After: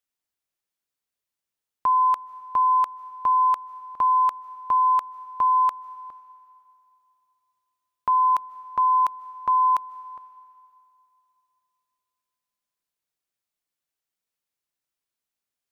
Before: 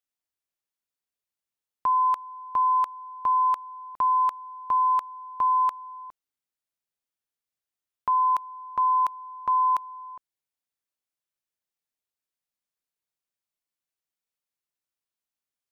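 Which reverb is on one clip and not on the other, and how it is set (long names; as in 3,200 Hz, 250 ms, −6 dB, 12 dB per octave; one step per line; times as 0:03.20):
comb and all-pass reverb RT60 2.7 s, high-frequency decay 0.9×, pre-delay 110 ms, DRR 19.5 dB
level +2.5 dB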